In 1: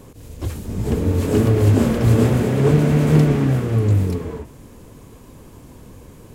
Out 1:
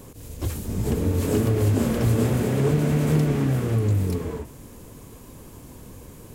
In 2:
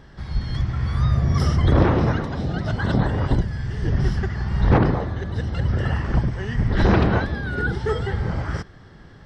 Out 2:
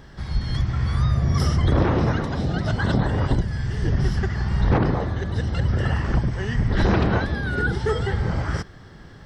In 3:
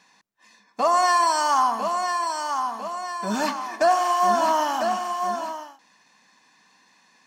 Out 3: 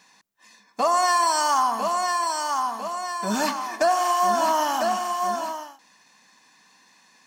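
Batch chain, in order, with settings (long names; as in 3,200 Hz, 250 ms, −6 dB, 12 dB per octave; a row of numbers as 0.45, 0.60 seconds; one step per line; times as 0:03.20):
high-shelf EQ 6,900 Hz +8 dB
downward compressor 2 to 1, threshold −19 dBFS
loudness normalisation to −23 LKFS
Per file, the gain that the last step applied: −1.5, +1.5, +1.0 decibels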